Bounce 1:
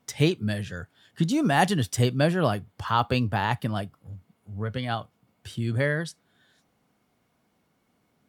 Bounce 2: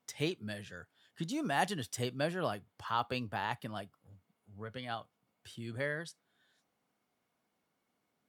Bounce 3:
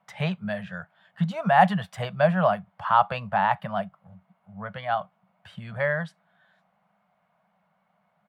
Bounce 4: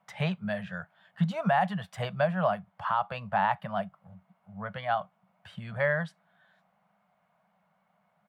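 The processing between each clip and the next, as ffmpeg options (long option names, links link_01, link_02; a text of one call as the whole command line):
ffmpeg -i in.wav -af "lowshelf=frequency=190:gain=-11.5,volume=-9dB" out.wav
ffmpeg -i in.wav -af "firequalizer=gain_entry='entry(120,0);entry(190,15);entry(270,-26);entry(610,11);entry(5600,-15)':delay=0.05:min_phase=1,volume=5.5dB" out.wav
ffmpeg -i in.wav -af "alimiter=limit=-14dB:level=0:latency=1:release=465,volume=-1.5dB" out.wav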